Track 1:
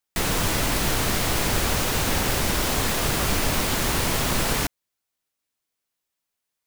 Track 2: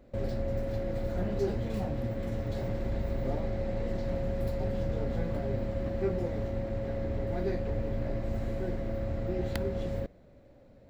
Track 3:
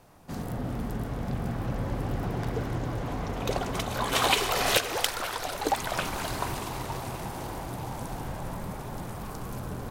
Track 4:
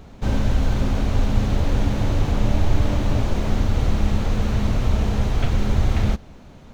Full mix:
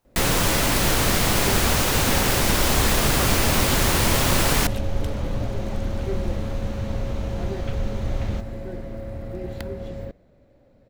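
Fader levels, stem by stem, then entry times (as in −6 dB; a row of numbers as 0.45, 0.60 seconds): +3.0, 0.0, −17.5, −8.0 decibels; 0.00, 0.05, 0.00, 2.25 seconds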